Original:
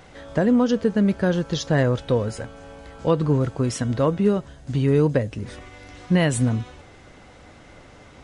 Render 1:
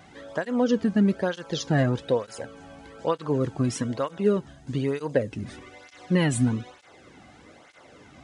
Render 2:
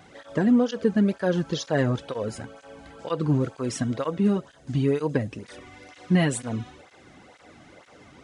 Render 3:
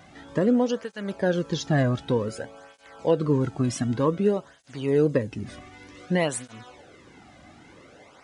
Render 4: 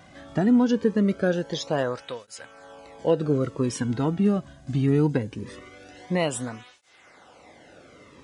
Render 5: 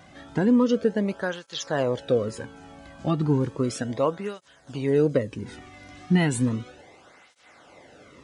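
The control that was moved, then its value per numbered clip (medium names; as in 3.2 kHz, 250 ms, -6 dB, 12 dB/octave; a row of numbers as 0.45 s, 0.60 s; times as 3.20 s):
cancelling through-zero flanger, nulls at: 1.1 Hz, 2.1 Hz, 0.54 Hz, 0.22 Hz, 0.34 Hz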